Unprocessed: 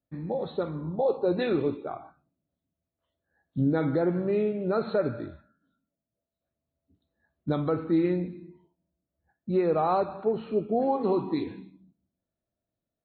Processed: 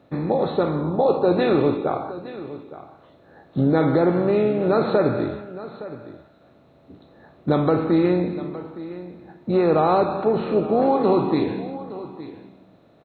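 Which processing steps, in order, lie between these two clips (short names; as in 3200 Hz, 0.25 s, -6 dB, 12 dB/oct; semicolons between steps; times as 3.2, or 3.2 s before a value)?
per-bin compression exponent 0.6; echo 0.865 s -15.5 dB; gain +4 dB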